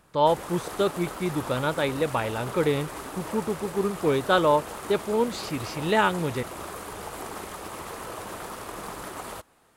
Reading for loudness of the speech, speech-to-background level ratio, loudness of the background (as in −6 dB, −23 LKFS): −26.5 LKFS, 10.5 dB, −37.0 LKFS